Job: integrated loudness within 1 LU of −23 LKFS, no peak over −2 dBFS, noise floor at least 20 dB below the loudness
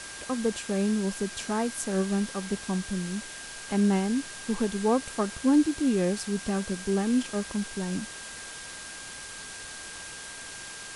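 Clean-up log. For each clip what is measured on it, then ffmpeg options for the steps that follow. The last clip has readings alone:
interfering tone 1,600 Hz; level of the tone −45 dBFS; background noise floor −42 dBFS; target noise floor −50 dBFS; integrated loudness −29.5 LKFS; sample peak −13.0 dBFS; target loudness −23.0 LKFS
→ -af "bandreject=frequency=1600:width=30"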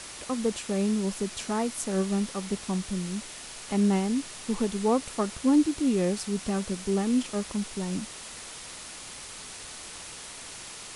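interfering tone none found; background noise floor −43 dBFS; target noise floor −49 dBFS
→ -af "afftdn=noise_reduction=6:noise_floor=-43"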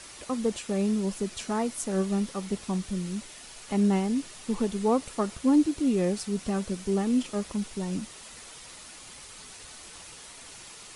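background noise floor −47 dBFS; target noise floor −49 dBFS
→ -af "afftdn=noise_reduction=6:noise_floor=-47"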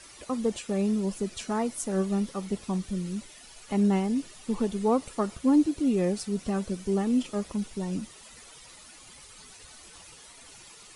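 background noise floor −50 dBFS; integrated loudness −28.5 LKFS; sample peak −13.5 dBFS; target loudness −23.0 LKFS
→ -af "volume=5.5dB"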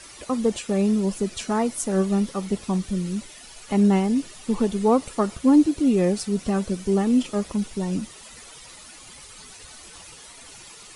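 integrated loudness −23.0 LKFS; sample peak −8.0 dBFS; background noise floor −45 dBFS

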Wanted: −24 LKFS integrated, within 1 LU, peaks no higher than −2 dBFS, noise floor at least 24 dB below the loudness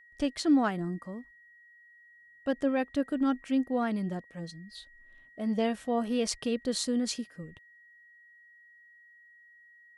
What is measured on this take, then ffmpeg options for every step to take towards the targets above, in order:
interfering tone 1,900 Hz; level of the tone −55 dBFS; integrated loudness −30.5 LKFS; sample peak −13.5 dBFS; target loudness −24.0 LKFS
→ -af "bandreject=frequency=1900:width=30"
-af "volume=6.5dB"

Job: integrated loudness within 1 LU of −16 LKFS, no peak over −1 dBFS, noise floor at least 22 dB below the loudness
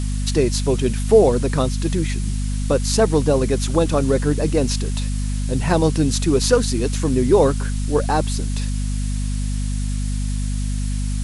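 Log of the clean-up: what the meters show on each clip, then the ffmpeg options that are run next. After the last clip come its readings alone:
mains hum 50 Hz; hum harmonics up to 250 Hz; level of the hum −20 dBFS; background noise floor −22 dBFS; target noise floor −42 dBFS; integrated loudness −20.0 LKFS; sample peak −2.0 dBFS; target loudness −16.0 LKFS
→ -af "bandreject=frequency=50:width_type=h:width=6,bandreject=frequency=100:width_type=h:width=6,bandreject=frequency=150:width_type=h:width=6,bandreject=frequency=200:width_type=h:width=6,bandreject=frequency=250:width_type=h:width=6"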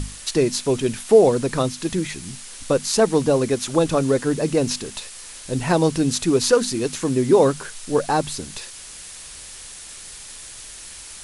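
mains hum none found; background noise floor −39 dBFS; target noise floor −43 dBFS
→ -af "afftdn=noise_reduction=6:noise_floor=-39"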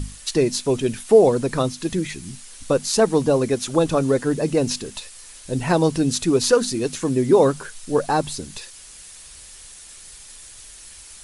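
background noise floor −43 dBFS; integrated loudness −20.5 LKFS; sample peak −3.0 dBFS; target loudness −16.0 LKFS
→ -af "volume=4.5dB,alimiter=limit=-1dB:level=0:latency=1"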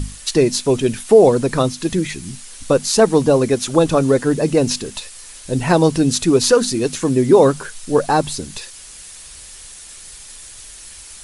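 integrated loudness −16.0 LKFS; sample peak −1.0 dBFS; background noise floor −38 dBFS

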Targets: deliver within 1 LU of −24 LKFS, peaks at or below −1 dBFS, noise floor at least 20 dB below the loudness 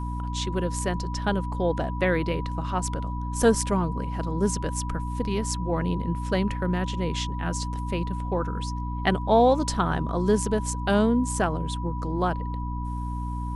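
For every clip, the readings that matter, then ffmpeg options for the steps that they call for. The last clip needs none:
mains hum 60 Hz; hum harmonics up to 300 Hz; level of the hum −28 dBFS; interfering tone 980 Hz; level of the tone −36 dBFS; integrated loudness −26.5 LKFS; sample peak −7.5 dBFS; target loudness −24.0 LKFS
→ -af "bandreject=frequency=60:width_type=h:width=4,bandreject=frequency=120:width_type=h:width=4,bandreject=frequency=180:width_type=h:width=4,bandreject=frequency=240:width_type=h:width=4,bandreject=frequency=300:width_type=h:width=4"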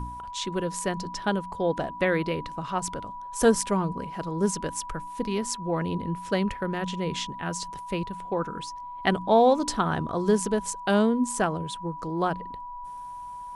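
mains hum none found; interfering tone 980 Hz; level of the tone −36 dBFS
→ -af "bandreject=frequency=980:width=30"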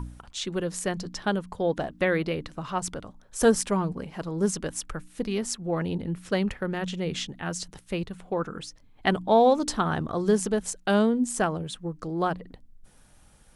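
interfering tone none found; integrated loudness −27.5 LKFS; sample peak −8.0 dBFS; target loudness −24.0 LKFS
→ -af "volume=3.5dB"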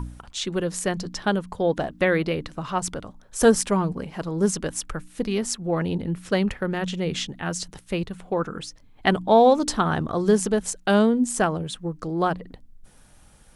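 integrated loudness −24.0 LKFS; sample peak −4.5 dBFS; background noise floor −53 dBFS

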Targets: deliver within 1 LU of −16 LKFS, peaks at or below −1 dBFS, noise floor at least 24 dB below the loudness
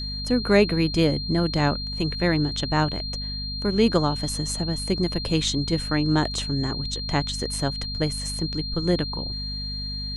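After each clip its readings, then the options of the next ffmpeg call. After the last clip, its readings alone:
mains hum 50 Hz; hum harmonics up to 250 Hz; level of the hum −31 dBFS; interfering tone 4,200 Hz; level of the tone −31 dBFS; integrated loudness −24.5 LKFS; sample peak −4.0 dBFS; target loudness −16.0 LKFS
→ -af "bandreject=frequency=50:width_type=h:width=4,bandreject=frequency=100:width_type=h:width=4,bandreject=frequency=150:width_type=h:width=4,bandreject=frequency=200:width_type=h:width=4,bandreject=frequency=250:width_type=h:width=4"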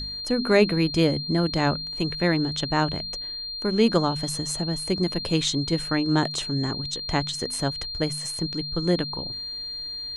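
mains hum none found; interfering tone 4,200 Hz; level of the tone −31 dBFS
→ -af "bandreject=frequency=4200:width=30"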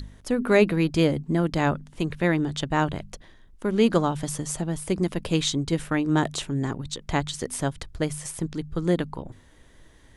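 interfering tone none found; integrated loudness −25.5 LKFS; sample peak −6.0 dBFS; target loudness −16.0 LKFS
→ -af "volume=9.5dB,alimiter=limit=-1dB:level=0:latency=1"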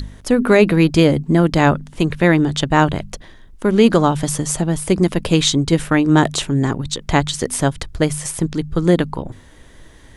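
integrated loudness −16.5 LKFS; sample peak −1.0 dBFS; background noise floor −44 dBFS

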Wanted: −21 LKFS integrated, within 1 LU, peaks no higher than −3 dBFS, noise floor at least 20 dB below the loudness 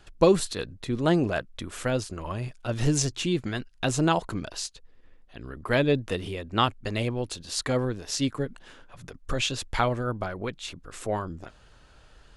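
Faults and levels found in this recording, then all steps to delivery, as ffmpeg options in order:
integrated loudness −28.0 LKFS; sample peak −8.0 dBFS; target loudness −21.0 LKFS
→ -af "volume=7dB,alimiter=limit=-3dB:level=0:latency=1"

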